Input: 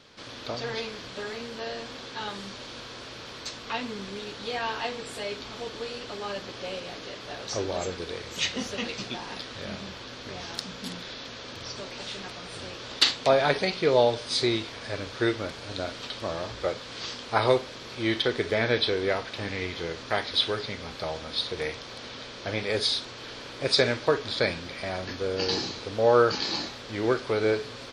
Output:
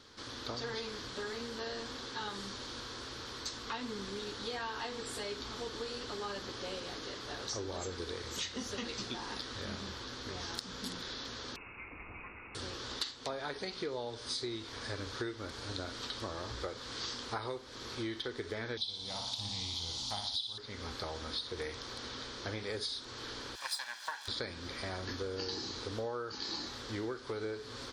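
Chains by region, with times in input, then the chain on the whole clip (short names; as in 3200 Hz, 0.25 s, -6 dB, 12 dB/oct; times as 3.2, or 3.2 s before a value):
11.56–12.55 bell 1000 Hz -11 dB 1 oct + inverted band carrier 2700 Hz
18.77–20.58 EQ curve 220 Hz 0 dB, 400 Hz -19 dB, 830 Hz +4 dB, 1700 Hz -18 dB, 3400 Hz +10 dB + flutter echo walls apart 9.9 m, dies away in 0.6 s
23.55–24.28 minimum comb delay 1.2 ms + HPF 1100 Hz
whole clip: fifteen-band EQ 160 Hz -9 dB, 630 Hz -9 dB, 2500 Hz -9 dB; compressor 12:1, threshold -35 dBFS; bell 63 Hz +3 dB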